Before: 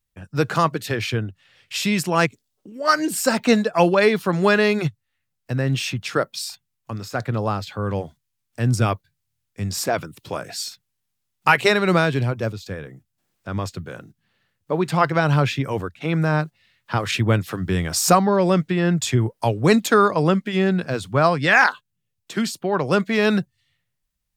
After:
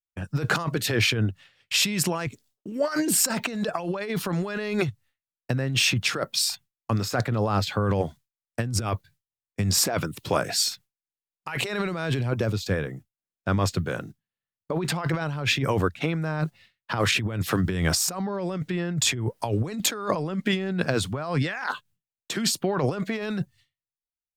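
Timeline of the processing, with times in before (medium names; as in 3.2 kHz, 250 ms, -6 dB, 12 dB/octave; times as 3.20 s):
22.58–23.21 s: peaking EQ 700 Hz -4 dB -> +6 dB 1.9 oct
whole clip: expander -45 dBFS; compressor with a negative ratio -26 dBFS, ratio -1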